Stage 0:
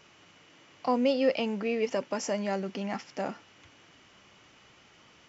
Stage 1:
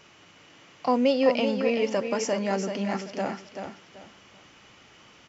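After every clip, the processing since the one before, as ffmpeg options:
-af "aecho=1:1:384|768|1152:0.447|0.116|0.0302,volume=3.5dB"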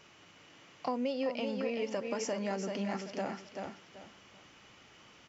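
-af "acompressor=threshold=-27dB:ratio=4,volume=-4.5dB"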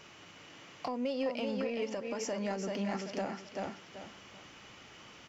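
-af "alimiter=level_in=4.5dB:limit=-24dB:level=0:latency=1:release=436,volume=-4.5dB,aeval=exprs='0.0376*(cos(1*acos(clip(val(0)/0.0376,-1,1)))-cos(1*PI/2))+0.00106*(cos(5*acos(clip(val(0)/0.0376,-1,1)))-cos(5*PI/2))':c=same,volume=3.5dB"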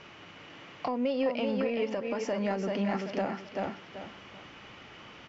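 -af "lowpass=3.5k,volume=5dB"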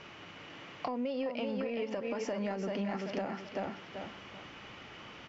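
-af "acompressor=threshold=-32dB:ratio=6"

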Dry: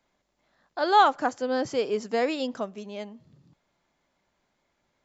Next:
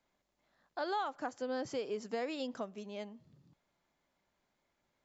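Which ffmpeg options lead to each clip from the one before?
-af "acompressor=threshold=-28dB:ratio=4,volume=-6.5dB"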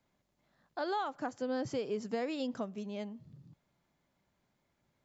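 -af "equalizer=f=120:w=0.67:g=10.5"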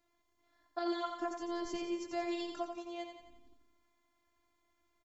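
-filter_complex "[0:a]afftfilt=real='hypot(re,im)*cos(PI*b)':imag='0':win_size=512:overlap=0.75,asplit=2[a][b];[b]aecho=0:1:88|176|264|352|440|528:0.473|0.246|0.128|0.0665|0.0346|0.018[c];[a][c]amix=inputs=2:normalize=0,volume=3.5dB"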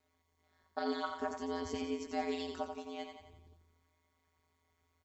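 -af "aeval=exprs='val(0)*sin(2*PI*81*n/s)':c=same,flanger=delay=3.2:depth=7.7:regen=76:speed=0.5:shape=sinusoidal,volume=7.5dB"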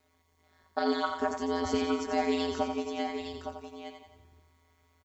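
-af "aecho=1:1:862:0.422,volume=7.5dB"

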